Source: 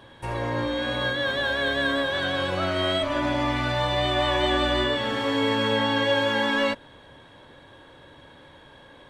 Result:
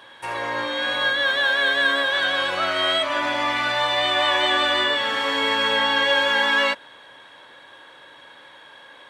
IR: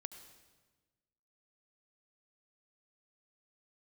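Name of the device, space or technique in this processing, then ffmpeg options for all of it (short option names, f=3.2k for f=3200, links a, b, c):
filter by subtraction: -filter_complex "[0:a]asplit=2[a][b];[b]lowpass=1.5k,volume=-1[c];[a][c]amix=inputs=2:normalize=0,volume=5dB"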